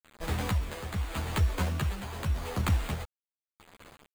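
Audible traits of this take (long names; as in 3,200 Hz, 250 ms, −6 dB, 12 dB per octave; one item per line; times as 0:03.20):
aliases and images of a low sample rate 5,600 Hz, jitter 0%
tremolo triangle 0.85 Hz, depth 70%
a quantiser's noise floor 8 bits, dither none
a shimmering, thickened sound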